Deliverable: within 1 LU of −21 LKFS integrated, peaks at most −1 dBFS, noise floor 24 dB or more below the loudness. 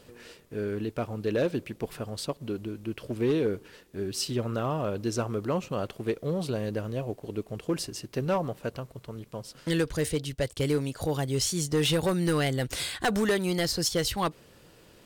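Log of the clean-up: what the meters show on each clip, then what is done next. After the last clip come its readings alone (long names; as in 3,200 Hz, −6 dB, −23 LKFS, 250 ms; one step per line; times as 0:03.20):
share of clipped samples 0.9%; peaks flattened at −19.5 dBFS; integrated loudness −30.0 LKFS; sample peak −19.5 dBFS; target loudness −21.0 LKFS
→ clipped peaks rebuilt −19.5 dBFS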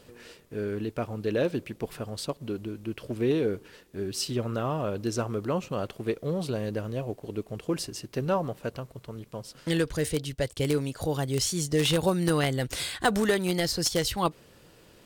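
share of clipped samples 0.0%; integrated loudness −29.5 LKFS; sample peak −10.5 dBFS; target loudness −21.0 LKFS
→ level +8.5 dB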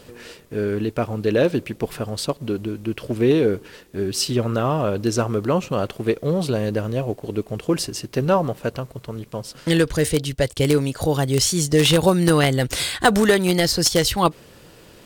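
integrated loudness −21.0 LKFS; sample peak −2.0 dBFS; background noise floor −48 dBFS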